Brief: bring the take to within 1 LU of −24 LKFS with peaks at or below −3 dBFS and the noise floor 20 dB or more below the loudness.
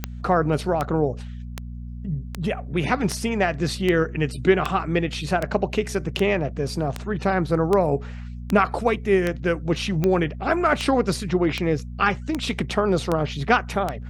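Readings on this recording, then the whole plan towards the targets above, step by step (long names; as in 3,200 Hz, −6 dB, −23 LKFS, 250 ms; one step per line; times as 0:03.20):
number of clicks 19; mains hum 60 Hz; hum harmonics up to 240 Hz; level of the hum −32 dBFS; integrated loudness −23.0 LKFS; sample peak −4.0 dBFS; target loudness −24.0 LKFS
→ click removal
hum removal 60 Hz, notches 4
level −1 dB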